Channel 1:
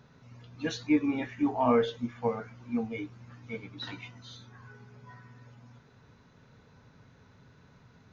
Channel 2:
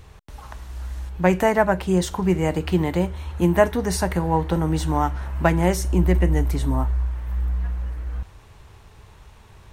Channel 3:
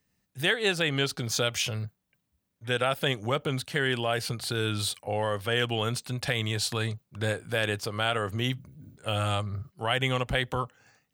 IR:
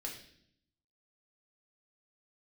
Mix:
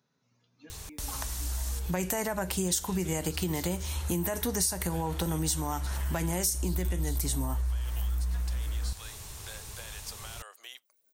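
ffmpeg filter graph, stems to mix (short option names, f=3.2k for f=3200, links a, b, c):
-filter_complex "[0:a]highpass=160,alimiter=limit=-23.5dB:level=0:latency=1:release=368,volume=-17dB[a];[1:a]highshelf=f=4.2k:g=10,alimiter=limit=-13dB:level=0:latency=1:release=70,adelay=700,volume=0dB[b];[2:a]highpass=f=610:w=0.5412,highpass=f=610:w=1.3066,alimiter=limit=-20dB:level=0:latency=1:release=26,adelay=2250,volume=-8.5dB[c];[a][c]amix=inputs=2:normalize=0,aeval=exprs='0.0473*(cos(1*acos(clip(val(0)/0.0473,-1,1)))-cos(1*PI/2))+0.000376*(cos(7*acos(clip(val(0)/0.0473,-1,1)))-cos(7*PI/2))':c=same,acompressor=threshold=-47dB:ratio=3,volume=0dB[d];[b][d]amix=inputs=2:normalize=0,bass=f=250:g=1,treble=f=4k:g=12,acompressor=threshold=-30dB:ratio=3"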